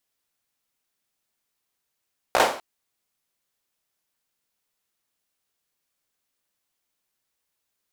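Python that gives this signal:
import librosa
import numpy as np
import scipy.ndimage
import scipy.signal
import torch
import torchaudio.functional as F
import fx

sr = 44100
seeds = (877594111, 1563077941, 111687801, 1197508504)

y = fx.drum_clap(sr, seeds[0], length_s=0.25, bursts=4, spacing_ms=16, hz=690.0, decay_s=0.44)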